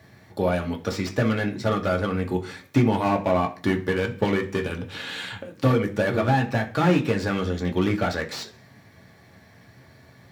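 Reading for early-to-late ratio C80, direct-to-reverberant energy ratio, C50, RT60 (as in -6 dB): 18.5 dB, 1.0 dB, 14.0 dB, 0.40 s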